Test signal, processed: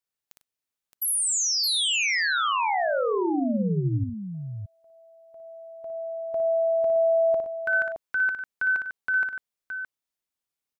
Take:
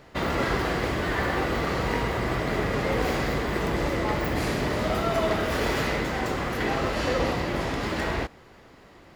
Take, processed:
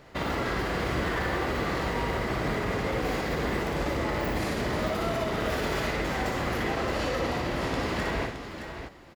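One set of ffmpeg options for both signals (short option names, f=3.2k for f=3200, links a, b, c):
-filter_complex "[0:a]alimiter=limit=-20dB:level=0:latency=1,asplit=2[a][b];[b]aecho=0:1:58|99|618:0.531|0.2|0.398[c];[a][c]amix=inputs=2:normalize=0,volume=-1.5dB"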